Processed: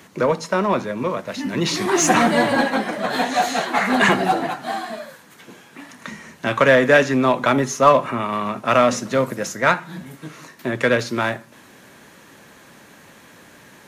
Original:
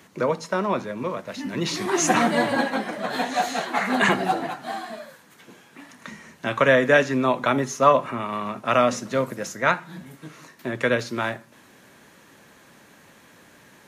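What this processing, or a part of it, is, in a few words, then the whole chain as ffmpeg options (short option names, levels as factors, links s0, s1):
parallel distortion: -filter_complex "[0:a]asplit=2[s0][s1];[s1]asoftclip=type=hard:threshold=0.0891,volume=0.447[s2];[s0][s2]amix=inputs=2:normalize=0,volume=1.26"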